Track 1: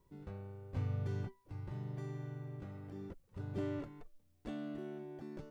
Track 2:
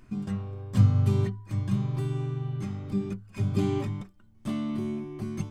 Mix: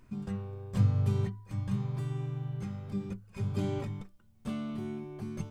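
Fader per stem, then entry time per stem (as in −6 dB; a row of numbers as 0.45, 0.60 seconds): +0.5, −5.5 decibels; 0.00, 0.00 seconds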